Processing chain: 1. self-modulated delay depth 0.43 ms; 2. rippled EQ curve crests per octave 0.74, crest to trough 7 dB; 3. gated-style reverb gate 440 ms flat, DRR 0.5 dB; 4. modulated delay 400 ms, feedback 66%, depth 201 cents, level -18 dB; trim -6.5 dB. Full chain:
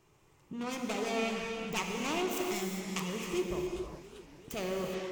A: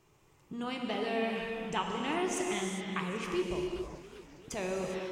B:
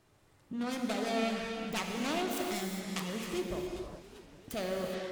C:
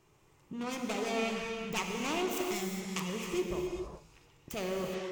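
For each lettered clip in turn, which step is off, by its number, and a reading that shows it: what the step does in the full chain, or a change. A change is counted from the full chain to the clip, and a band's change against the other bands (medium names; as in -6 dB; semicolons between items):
1, 1 kHz band +2.0 dB; 2, 250 Hz band +1.5 dB; 4, momentary loudness spread change -2 LU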